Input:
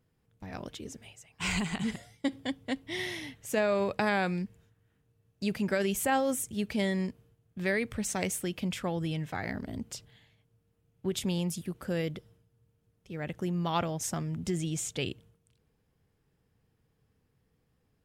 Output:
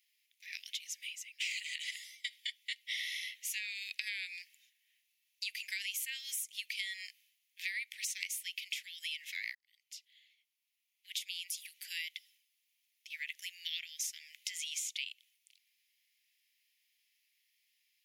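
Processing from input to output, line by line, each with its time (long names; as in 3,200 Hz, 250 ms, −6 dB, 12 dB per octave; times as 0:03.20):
0:09.55–0:11.94: fade in
whole clip: Butterworth high-pass 2,000 Hz 72 dB per octave; parametric band 8,200 Hz −8.5 dB 0.3 octaves; downward compressor, threshold −47 dBFS; level +10.5 dB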